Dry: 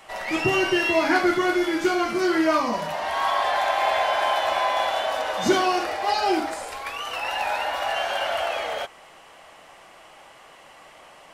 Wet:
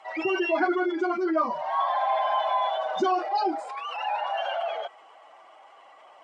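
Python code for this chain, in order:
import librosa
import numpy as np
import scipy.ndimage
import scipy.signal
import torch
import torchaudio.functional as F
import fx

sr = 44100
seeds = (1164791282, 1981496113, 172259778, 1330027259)

y = fx.spec_expand(x, sr, power=1.7)
y = fx.cabinet(y, sr, low_hz=370.0, low_slope=12, high_hz=9000.0, hz=(540.0, 1800.0, 2700.0), db=(-5, -5, -5))
y = fx.stretch_vocoder(y, sr, factor=0.55)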